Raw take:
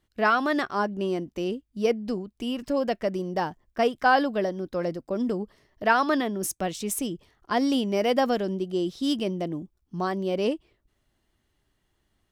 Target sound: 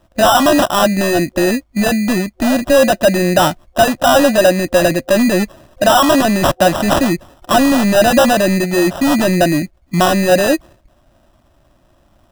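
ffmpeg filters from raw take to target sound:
ffmpeg -i in.wav -af "apsyclip=26.5dB,acrusher=samples=20:mix=1:aa=0.000001,superequalizer=7b=0.398:8b=2,volume=-8dB" out.wav

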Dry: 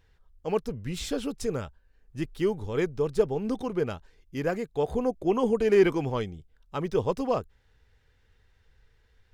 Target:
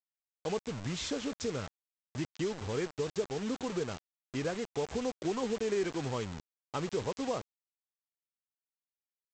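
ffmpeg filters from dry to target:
ffmpeg -i in.wav -af "highpass=frequency=69:width=0.5412,highpass=frequency=69:width=1.3066,acompressor=threshold=-33dB:ratio=3,aresample=16000,acrusher=bits=6:mix=0:aa=0.000001,aresample=44100" out.wav

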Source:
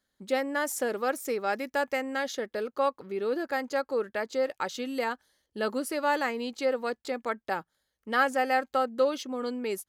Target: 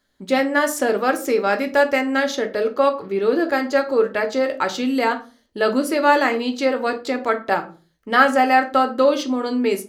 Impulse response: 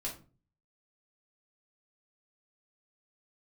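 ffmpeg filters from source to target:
-filter_complex "[0:a]asplit=2[link_01][link_02];[1:a]atrim=start_sample=2205,afade=type=out:start_time=0.42:duration=0.01,atrim=end_sample=18963,lowpass=6800[link_03];[link_02][link_03]afir=irnorm=-1:irlink=0,volume=-0.5dB[link_04];[link_01][link_04]amix=inputs=2:normalize=0,volume=6dB"

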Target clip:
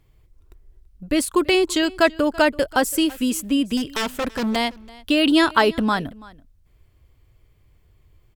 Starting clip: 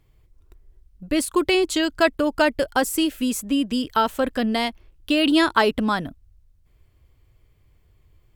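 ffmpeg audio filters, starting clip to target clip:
ffmpeg -i in.wav -filter_complex "[0:a]asettb=1/sr,asplit=3[link_01][link_02][link_03];[link_01]atrim=end=3.774[link_04];[link_02]atrim=start=3.77:end=4.56,asetpts=PTS-STARTPTS,afade=type=in:duration=0.004:curve=qsin,afade=type=out:start_time=0.786:duration=0.004:curve=qsin,aeval=exprs='0.106*(abs(mod(val(0)/0.106+3,4)-2)-1)':channel_layout=same[link_05];[link_03]atrim=start=4.556[link_06];[link_04][link_05]acrossfade=duration=0.004:curve1=hsin:curve2=qsin[link_07];[link_07][link_06]acrossfade=duration=0.004:curve1=qsin:curve2=hsin,aecho=1:1:333:0.0794,volume=1.5dB" out.wav

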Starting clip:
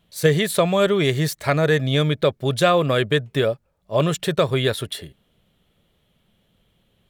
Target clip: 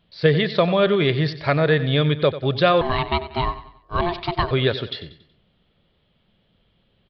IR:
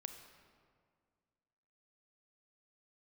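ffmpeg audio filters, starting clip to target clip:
-filter_complex "[0:a]aecho=1:1:93|186|279|372:0.2|0.0838|0.0352|0.0148,asettb=1/sr,asplit=3[link_01][link_02][link_03];[link_01]atrim=end=2.814[link_04];[link_02]atrim=start=2.81:end=4.51,asetpts=PTS-STARTPTS,afade=type=in:duration=0.004:curve=qsin,afade=type=out:start_time=1.696:duration=0.004:curve=qsin,aeval=exprs='val(0)*sin(2*PI*520*n/s)':channel_layout=same[link_05];[link_03]atrim=start=4.506[link_06];[link_04][link_05]acrossfade=duration=0.004:curve1=hsin:curve2=qsin[link_07];[link_07][link_06]acrossfade=duration=0.004:curve1=qsin:curve2=hsin,aresample=11025,aresample=44100"

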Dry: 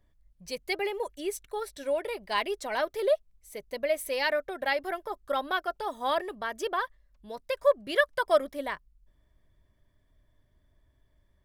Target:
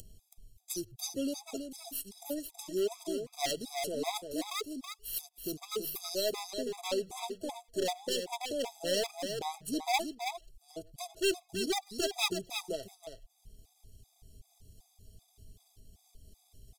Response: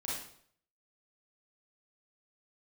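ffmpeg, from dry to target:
-filter_complex "[0:a]highshelf=frequency=1600:width_type=q:width=3:gain=-11.5,acrossover=split=420|1900[link_01][link_02][link_03];[link_02]agate=range=-8dB:threshold=-53dB:ratio=16:detection=peak[link_04];[link_03]aeval=exprs='abs(val(0))':channel_layout=same[link_05];[link_01][link_04][link_05]amix=inputs=3:normalize=0,equalizer=frequency=150:width=5.7:gain=11.5,asetrate=30076,aresample=44100,asoftclip=type=hard:threshold=-22dB,asplit=2[link_06][link_07];[link_07]adelay=100,highpass=300,lowpass=3400,asoftclip=type=hard:threshold=-31.5dB,volume=-25dB[link_08];[link_06][link_08]amix=inputs=2:normalize=0,acompressor=mode=upward:threshold=-34dB:ratio=2.5,aexciter=amount=10.1:drive=7.7:freq=2600,asplit=2[link_09][link_10];[link_10]aecho=0:1:326:0.447[link_11];[link_09][link_11]amix=inputs=2:normalize=0,afftfilt=real='re*gt(sin(2*PI*2.6*pts/sr)*(1-2*mod(floor(b*sr/1024/660),2)),0)':imag='im*gt(sin(2*PI*2.6*pts/sr)*(1-2*mod(floor(b*sr/1024/660),2)),0)':win_size=1024:overlap=0.75,volume=-4dB"

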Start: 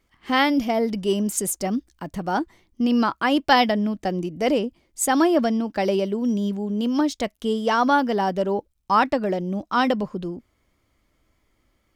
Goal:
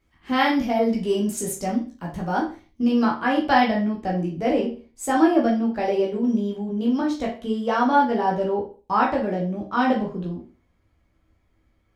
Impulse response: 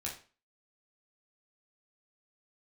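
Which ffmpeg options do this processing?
-filter_complex "[0:a]asetnsamples=nb_out_samples=441:pad=0,asendcmd='3.05 highshelf g -10',highshelf=frequency=3000:gain=-4[link_01];[1:a]atrim=start_sample=2205,afade=type=out:start_time=0.38:duration=0.01,atrim=end_sample=17199[link_02];[link_01][link_02]afir=irnorm=-1:irlink=0"

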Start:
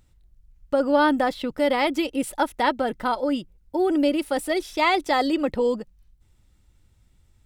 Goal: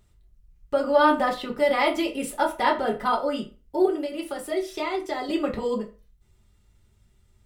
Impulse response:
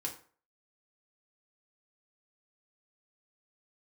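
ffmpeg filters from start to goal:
-filter_complex "[0:a]asettb=1/sr,asplit=3[link_01][link_02][link_03];[link_01]atrim=end=3.854[link_04];[link_02]atrim=start=3.85:end=5.29,asetpts=PTS-STARTPTS,afade=type=in:duration=0.004:curve=qsin,afade=type=out:start_time=1.436:duration=0.004:curve=qsin,acrossover=split=160|320[link_05][link_06][link_07];[link_05]acompressor=threshold=-52dB:ratio=4[link_08];[link_06]acompressor=threshold=-34dB:ratio=4[link_09];[link_07]acompressor=threshold=-30dB:ratio=4[link_10];[link_08][link_09][link_10]amix=inputs=3:normalize=0[link_11];[link_03]atrim=start=5.286[link_12];[link_04][link_11]acrossfade=duration=0.004:curve1=hsin:curve2=qsin[link_13];[link_13][link_12]acrossfade=duration=0.004:curve1=qsin:curve2=hsin[link_14];[1:a]atrim=start_sample=2205,asetrate=57330,aresample=44100[link_15];[link_14][link_15]afir=irnorm=-1:irlink=0,volume=2dB"

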